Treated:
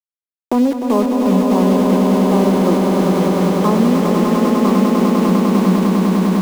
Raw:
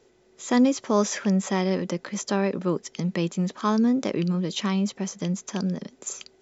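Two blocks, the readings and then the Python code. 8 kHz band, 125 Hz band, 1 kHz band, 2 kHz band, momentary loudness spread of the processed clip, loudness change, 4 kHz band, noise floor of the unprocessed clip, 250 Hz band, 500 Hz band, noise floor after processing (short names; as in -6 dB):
n/a, +10.5 dB, +12.5 dB, +6.5 dB, 2 LU, +11.5 dB, +5.0 dB, -60 dBFS, +12.0 dB, +12.0 dB, under -85 dBFS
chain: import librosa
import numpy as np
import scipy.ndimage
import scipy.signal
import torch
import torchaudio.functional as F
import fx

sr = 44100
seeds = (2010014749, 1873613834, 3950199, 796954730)

p1 = scipy.signal.sosfilt(scipy.signal.cheby1(5, 1.0, [180.0, 1200.0], 'bandpass', fs=sr, output='sos'), x)
p2 = fx.rider(p1, sr, range_db=10, speed_s=2.0)
p3 = p1 + (p2 * librosa.db_to_amplitude(0.0))
p4 = np.where(np.abs(p3) >= 10.0 ** (-25.0 / 20.0), p3, 0.0)
p5 = fx.echo_swell(p4, sr, ms=100, loudest=8, wet_db=-5.5)
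y = fx.band_squash(p5, sr, depth_pct=40)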